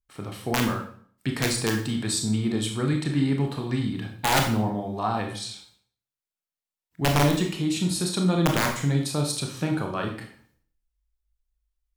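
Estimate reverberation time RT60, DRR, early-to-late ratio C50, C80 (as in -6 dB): 0.55 s, 2.0 dB, 7.0 dB, 10.5 dB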